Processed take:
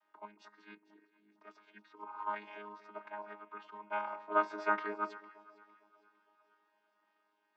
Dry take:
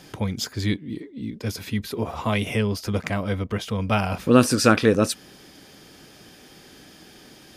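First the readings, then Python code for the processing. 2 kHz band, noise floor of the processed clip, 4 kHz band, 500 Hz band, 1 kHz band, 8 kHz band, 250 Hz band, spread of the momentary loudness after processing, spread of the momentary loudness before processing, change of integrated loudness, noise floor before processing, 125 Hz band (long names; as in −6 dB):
−12.0 dB, −78 dBFS, −29.5 dB, −18.5 dB, −8.0 dB, below −40 dB, −27.5 dB, 23 LU, 14 LU, −15.0 dB, −49 dBFS, below −40 dB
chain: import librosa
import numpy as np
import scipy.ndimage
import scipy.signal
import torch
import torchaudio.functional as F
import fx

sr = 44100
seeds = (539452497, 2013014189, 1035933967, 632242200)

y = fx.chord_vocoder(x, sr, chord='bare fifth', root=56)
y = fx.ladder_bandpass(y, sr, hz=1200.0, resonance_pct=50)
y = fx.echo_alternate(y, sr, ms=228, hz=1000.0, feedback_pct=73, wet_db=-13.5)
y = fx.band_widen(y, sr, depth_pct=40)
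y = y * 10.0 ** (3.5 / 20.0)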